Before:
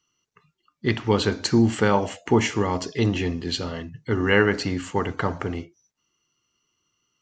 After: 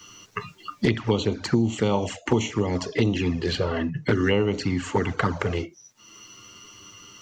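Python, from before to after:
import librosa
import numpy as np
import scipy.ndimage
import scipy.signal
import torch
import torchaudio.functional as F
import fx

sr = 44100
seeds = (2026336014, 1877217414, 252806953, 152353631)

y = fx.env_flanger(x, sr, rest_ms=10.1, full_db=-17.5)
y = fx.band_squash(y, sr, depth_pct=100)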